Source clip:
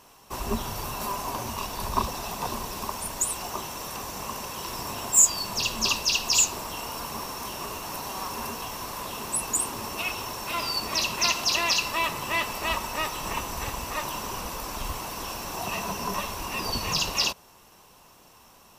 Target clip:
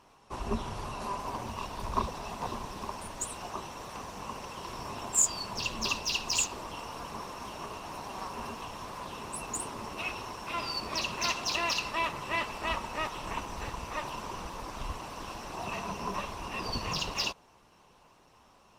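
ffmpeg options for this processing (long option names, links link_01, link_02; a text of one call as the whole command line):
ffmpeg -i in.wav -af "adynamicsmooth=sensitivity=1:basefreq=6000,volume=-3dB" -ar 48000 -c:a libopus -b:a 24k out.opus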